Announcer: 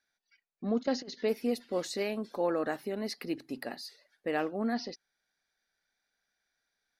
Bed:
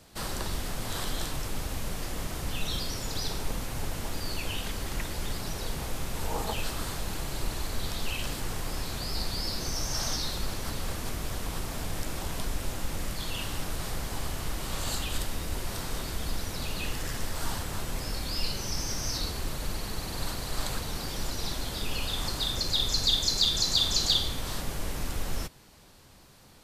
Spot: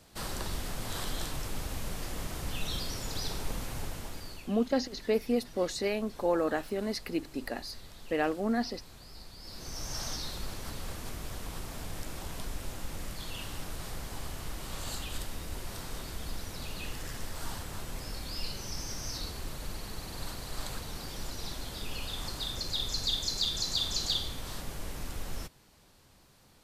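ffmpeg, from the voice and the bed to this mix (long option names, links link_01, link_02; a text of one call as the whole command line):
ffmpeg -i stem1.wav -i stem2.wav -filter_complex "[0:a]adelay=3850,volume=2dB[link_01];[1:a]volume=8dB,afade=type=out:start_time=3.7:duration=0.81:silence=0.199526,afade=type=in:start_time=9.39:duration=0.52:silence=0.281838[link_02];[link_01][link_02]amix=inputs=2:normalize=0" out.wav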